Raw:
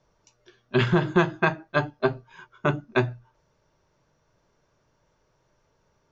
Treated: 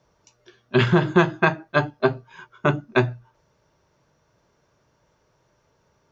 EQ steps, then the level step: high-pass 45 Hz; +3.5 dB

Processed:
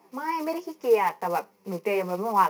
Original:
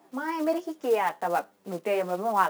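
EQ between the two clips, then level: rippled EQ curve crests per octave 0.83, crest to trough 9 dB; 0.0 dB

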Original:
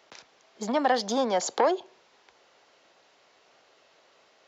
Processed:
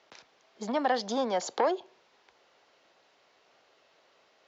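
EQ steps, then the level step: low-pass 6.4 kHz 12 dB/octave; -3.5 dB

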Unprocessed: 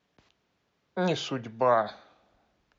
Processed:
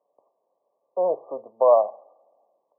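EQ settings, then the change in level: resonant high-pass 560 Hz, resonance Q 4.2; brick-wall FIR low-pass 1.2 kHz; -2.0 dB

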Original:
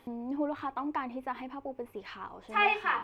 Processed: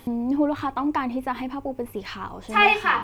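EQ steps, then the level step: tone controls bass +9 dB, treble +10 dB; +8.0 dB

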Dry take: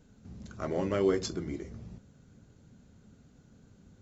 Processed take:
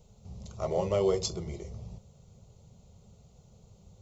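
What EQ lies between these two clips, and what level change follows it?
static phaser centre 670 Hz, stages 4; +5.5 dB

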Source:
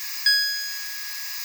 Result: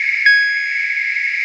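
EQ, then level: rippled Chebyshev high-pass 1.4 kHz, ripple 3 dB; resonant low-pass 2.2 kHz, resonance Q 15; +9.0 dB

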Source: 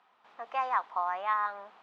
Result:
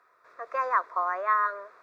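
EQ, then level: dynamic bell 430 Hz, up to +4 dB, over -41 dBFS, Q 0.72; static phaser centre 820 Hz, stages 6; +6.5 dB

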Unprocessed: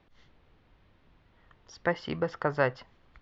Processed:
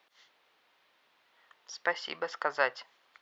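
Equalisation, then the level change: high-pass 660 Hz 12 dB/octave; treble shelf 3.6 kHz +10 dB; 0.0 dB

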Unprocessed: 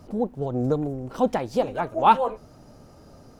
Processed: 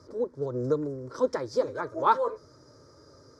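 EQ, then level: Chebyshev band-pass 120–6000 Hz, order 2; peaking EQ 5.1 kHz +7.5 dB 0.44 oct; static phaser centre 750 Hz, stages 6; 0.0 dB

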